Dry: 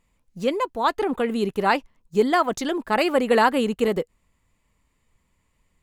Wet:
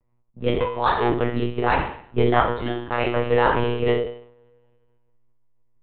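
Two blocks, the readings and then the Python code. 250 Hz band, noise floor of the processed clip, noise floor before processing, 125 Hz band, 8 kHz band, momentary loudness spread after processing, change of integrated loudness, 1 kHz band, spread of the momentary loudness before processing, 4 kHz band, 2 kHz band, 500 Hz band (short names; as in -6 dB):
-1.5 dB, -64 dBFS, -70 dBFS, +12.0 dB, under -40 dB, 9 LU, 0.0 dB, +0.5 dB, 8 LU, -1.5 dB, 0.0 dB, +0.5 dB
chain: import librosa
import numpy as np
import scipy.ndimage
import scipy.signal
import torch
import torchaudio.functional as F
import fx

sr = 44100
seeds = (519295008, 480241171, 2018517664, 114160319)

p1 = x + fx.room_flutter(x, sr, wall_m=4.3, rt60_s=0.61, dry=0)
p2 = fx.rider(p1, sr, range_db=10, speed_s=2.0)
p3 = fx.backlash(p2, sr, play_db=-23.0)
p4 = p2 + (p3 * 10.0 ** (-11.5 / 20.0))
p5 = fx.env_lowpass(p4, sr, base_hz=900.0, full_db=-14.5)
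p6 = fx.rev_double_slope(p5, sr, seeds[0], early_s=0.46, late_s=2.2, knee_db=-21, drr_db=11.5)
p7 = fx.lpc_monotone(p6, sr, seeds[1], pitch_hz=120.0, order=16)
y = p7 * 10.0 ** (-5.5 / 20.0)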